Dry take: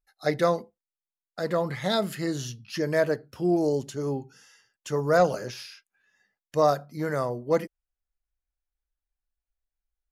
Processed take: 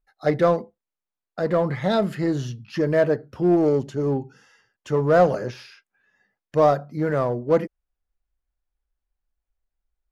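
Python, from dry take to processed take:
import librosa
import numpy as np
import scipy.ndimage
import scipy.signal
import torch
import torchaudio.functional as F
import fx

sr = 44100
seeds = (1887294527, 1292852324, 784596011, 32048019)

p1 = fx.lowpass(x, sr, hz=1300.0, slope=6)
p2 = np.clip(p1, -10.0 ** (-27.5 / 20.0), 10.0 ** (-27.5 / 20.0))
p3 = p1 + (p2 * 10.0 ** (-7.5 / 20.0))
y = p3 * 10.0 ** (4.0 / 20.0)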